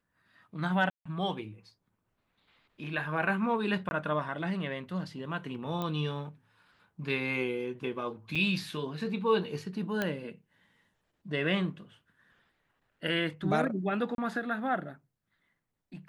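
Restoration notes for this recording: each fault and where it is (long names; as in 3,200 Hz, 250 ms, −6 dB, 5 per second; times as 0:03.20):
0:00.90–0:01.05: drop-out 155 ms
0:03.89–0:03.91: drop-out 21 ms
0:05.82: click −21 dBFS
0:08.35–0:08.36: drop-out 5.7 ms
0:10.02: click −16 dBFS
0:14.15–0:14.18: drop-out 32 ms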